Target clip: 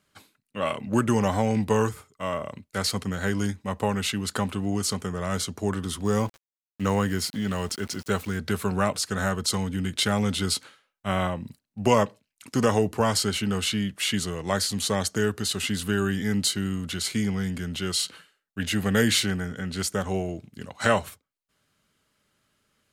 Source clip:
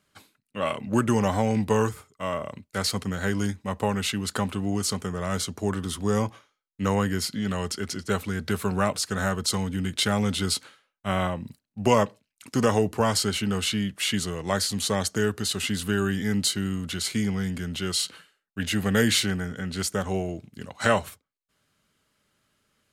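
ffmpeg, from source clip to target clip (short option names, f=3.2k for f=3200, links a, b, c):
-filter_complex "[0:a]asplit=3[a][b][c];[a]afade=t=out:st=6.04:d=0.02[d];[b]aeval=exprs='val(0)*gte(abs(val(0)),0.00841)':c=same,afade=t=in:st=6.04:d=0.02,afade=t=out:st=8.37:d=0.02[e];[c]afade=t=in:st=8.37:d=0.02[f];[d][e][f]amix=inputs=3:normalize=0"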